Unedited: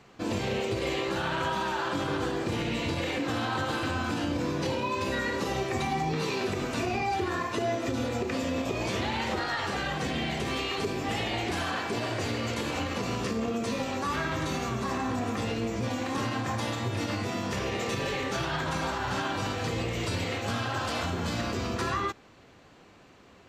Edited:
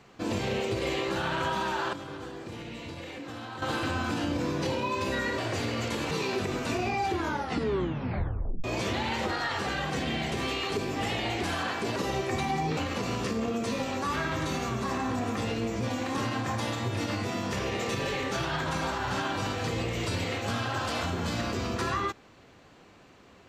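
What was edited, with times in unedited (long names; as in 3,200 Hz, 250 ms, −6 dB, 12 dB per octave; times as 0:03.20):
0:01.93–0:03.62: clip gain −10 dB
0:05.38–0:06.19: swap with 0:12.04–0:12.77
0:07.18: tape stop 1.54 s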